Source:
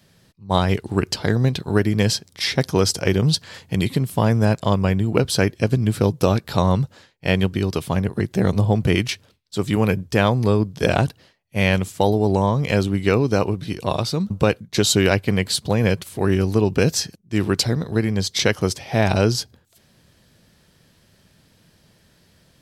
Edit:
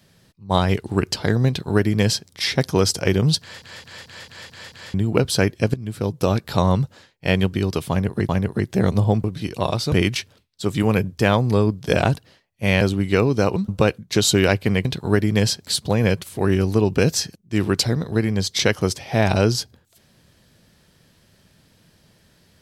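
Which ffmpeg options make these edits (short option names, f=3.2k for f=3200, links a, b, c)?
-filter_complex "[0:a]asplit=16[a][b][c][d][e][f][g][h][i][j][k][l][m][n][o][p];[a]atrim=end=3.622[q];[b]atrim=start=3.398:end=3.622[r];[c]atrim=start=3.398:end=3.622[s];[d]atrim=start=3.398:end=3.622[t];[e]atrim=start=3.398:end=3.622[u];[f]atrim=start=3.398:end=3.622[v];[g]atrim=start=3.398:end=3.622[w];[h]atrim=start=4.938:end=5.74,asetpts=PTS-STARTPTS,afade=t=out:st=0.798:d=0.004:c=hsin:silence=0.16788[x];[i]atrim=start=5.74:end=8.292,asetpts=PTS-STARTPTS,afade=t=in:d=0.7:silence=0.16788[y];[j]atrim=start=7.898:end=8.852[z];[k]atrim=start=13.498:end=14.182[aa];[l]atrim=start=8.848:end=11.742[ab];[m]atrim=start=12.748:end=13.502[ac];[n]atrim=start=14.178:end=15.472[ad];[o]atrim=start=1.478:end=2.302[ae];[p]atrim=start=15.468[af];[q][r]acrossfade=d=0.004:c1=hsin:c2=hsin[ag];[ag][s]acrossfade=d=0.004:c1=hsin:c2=hsin[ah];[ah][t]acrossfade=d=0.004:c1=hsin:c2=hsin[ai];[ai][u]acrossfade=d=0.004:c1=hsin:c2=hsin[aj];[aj][v]acrossfade=d=0.004:c1=hsin:c2=hsin[ak];[ak][w]acrossfade=d=0.004:c1=hsin:c2=hsin[al];[x][y]concat=n=2:v=0:a=1[am];[al][am]acrossfade=d=0.004:c1=hsin:c2=hsin[an];[an][z]acrossfade=d=0.004:c1=hsin:c2=hsin[ao];[ao][aa]acrossfade=d=0.004:c1=hsin:c2=hsin[ap];[ap][ab]acrossfade=d=0.004:c1=hsin:c2=hsin[aq];[aq][ac]acrossfade=d=0.004:c1=hsin:c2=hsin[ar];[ar][ad]acrossfade=d=0.004:c1=hsin:c2=hsin[as];[as][ae]acrossfade=d=0.004:c1=hsin:c2=hsin[at];[at][af]acrossfade=d=0.004:c1=hsin:c2=hsin"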